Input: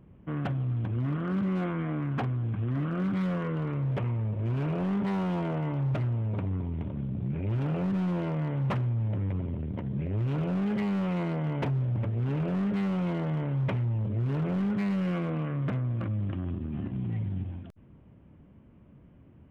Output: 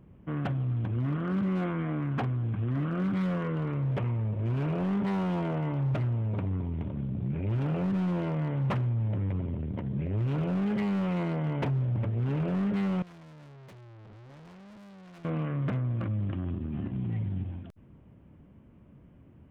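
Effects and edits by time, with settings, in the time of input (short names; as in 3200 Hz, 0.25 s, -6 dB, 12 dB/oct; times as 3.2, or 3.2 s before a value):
13.02–15.25 tube stage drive 49 dB, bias 0.8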